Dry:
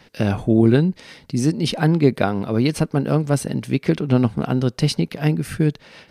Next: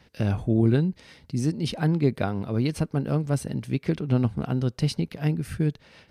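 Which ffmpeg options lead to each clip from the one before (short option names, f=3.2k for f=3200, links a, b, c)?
-af "equalizer=f=68:t=o:w=1.7:g=10,volume=-8.5dB"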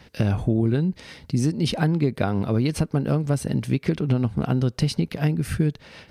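-af "acompressor=threshold=-25dB:ratio=6,volume=7.5dB"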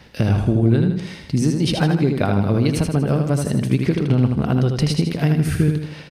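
-af "aecho=1:1:79|158|237|316|395|474:0.562|0.264|0.124|0.0584|0.0274|0.0129,volume=3dB"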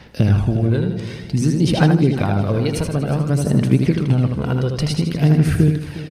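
-af "aphaser=in_gain=1:out_gain=1:delay=2.1:decay=0.43:speed=0.55:type=sinusoidal,aecho=1:1:360|720|1080|1440:0.178|0.0747|0.0314|0.0132,volume=-1dB"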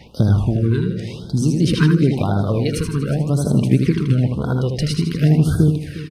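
-af "afftfilt=real='re*(1-between(b*sr/1024,640*pow(2300/640,0.5+0.5*sin(2*PI*0.94*pts/sr))/1.41,640*pow(2300/640,0.5+0.5*sin(2*PI*0.94*pts/sr))*1.41))':imag='im*(1-between(b*sr/1024,640*pow(2300/640,0.5+0.5*sin(2*PI*0.94*pts/sr))/1.41,640*pow(2300/640,0.5+0.5*sin(2*PI*0.94*pts/sr))*1.41))':win_size=1024:overlap=0.75"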